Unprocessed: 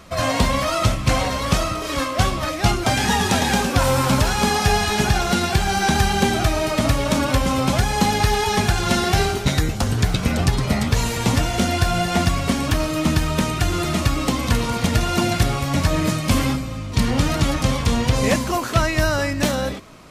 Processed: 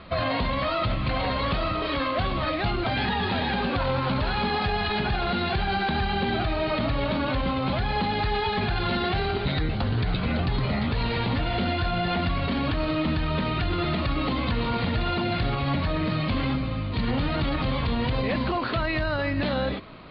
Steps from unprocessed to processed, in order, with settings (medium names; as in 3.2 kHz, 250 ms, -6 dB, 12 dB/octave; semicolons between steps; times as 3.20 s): steep low-pass 4.5 kHz 96 dB/octave; peak limiter -17.5 dBFS, peak gain reduction 11.5 dB